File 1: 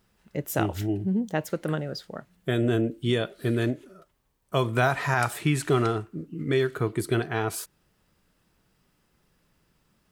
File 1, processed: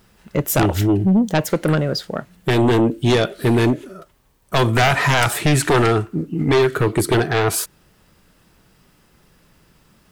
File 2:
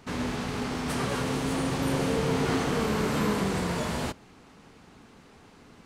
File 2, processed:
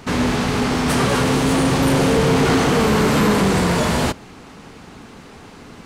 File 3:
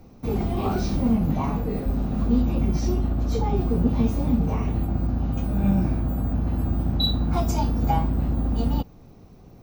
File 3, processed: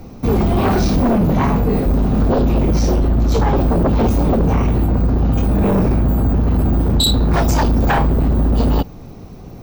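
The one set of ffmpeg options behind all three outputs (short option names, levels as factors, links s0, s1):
-af "aeval=exprs='0.422*sin(PI/2*3.98*val(0)/0.422)':c=same,volume=0.708"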